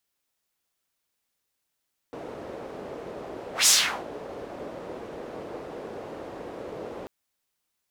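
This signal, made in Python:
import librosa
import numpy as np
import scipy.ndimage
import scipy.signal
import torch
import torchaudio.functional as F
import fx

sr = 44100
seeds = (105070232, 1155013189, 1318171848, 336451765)

y = fx.whoosh(sr, seeds[0], length_s=4.94, peak_s=1.54, rise_s=0.14, fall_s=0.41, ends_hz=480.0, peak_hz=7000.0, q=1.8, swell_db=21.5)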